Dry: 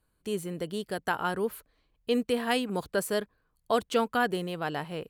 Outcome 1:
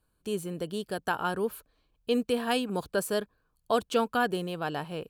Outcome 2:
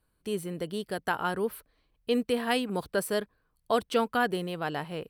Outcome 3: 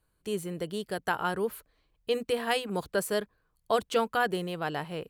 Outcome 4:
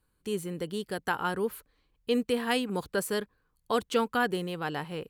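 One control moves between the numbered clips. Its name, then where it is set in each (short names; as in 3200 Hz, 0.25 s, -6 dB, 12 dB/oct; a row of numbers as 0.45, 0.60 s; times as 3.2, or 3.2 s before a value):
notch, frequency: 2000, 6900, 250, 650 Hz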